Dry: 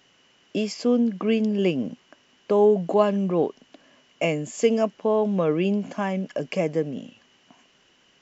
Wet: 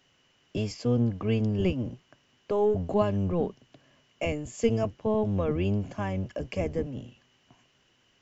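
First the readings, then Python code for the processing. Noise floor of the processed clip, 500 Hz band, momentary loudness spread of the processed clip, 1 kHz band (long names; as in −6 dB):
−67 dBFS, −6.5 dB, 8 LU, −6.5 dB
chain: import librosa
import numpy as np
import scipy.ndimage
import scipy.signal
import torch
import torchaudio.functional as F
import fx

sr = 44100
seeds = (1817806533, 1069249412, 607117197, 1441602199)

y = fx.octave_divider(x, sr, octaves=1, level_db=1.0)
y = F.gain(torch.from_numpy(y), -6.5).numpy()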